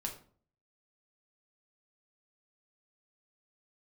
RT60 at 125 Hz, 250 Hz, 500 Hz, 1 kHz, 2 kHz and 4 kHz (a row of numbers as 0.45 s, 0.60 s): 0.65 s, 0.60 s, 0.50 s, 0.45 s, 0.35 s, 0.30 s